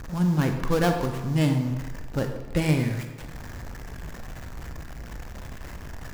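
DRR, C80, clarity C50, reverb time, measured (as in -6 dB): 5.0 dB, 8.0 dB, 6.5 dB, 1.2 s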